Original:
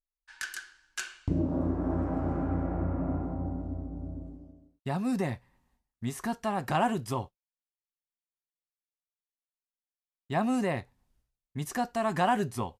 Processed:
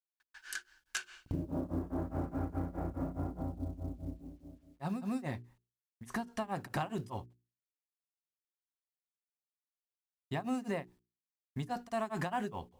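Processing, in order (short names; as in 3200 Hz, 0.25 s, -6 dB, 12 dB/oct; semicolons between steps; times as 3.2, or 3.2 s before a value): gate with hold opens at -55 dBFS; grains 0.236 s, grains 4.8/s, pitch spread up and down by 0 st; compressor 4:1, threshold -33 dBFS, peak gain reduction 8.5 dB; companded quantiser 8-bit; notches 60/120/180/240/300/360/420 Hz; gain +1 dB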